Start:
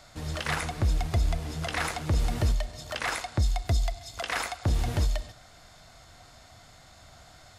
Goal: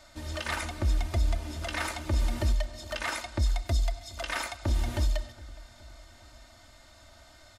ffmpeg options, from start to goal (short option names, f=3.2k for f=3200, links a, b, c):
-filter_complex "[0:a]aecho=1:1:3.3:0.78,asplit=2[a][b];[b]adelay=415,lowpass=f=2k:p=1,volume=-19.5dB,asplit=2[c][d];[d]adelay=415,lowpass=f=2k:p=1,volume=0.53,asplit=2[e][f];[f]adelay=415,lowpass=f=2k:p=1,volume=0.53,asplit=2[g][h];[h]adelay=415,lowpass=f=2k:p=1,volume=0.53[i];[a][c][e][g][i]amix=inputs=5:normalize=0,volume=-4dB"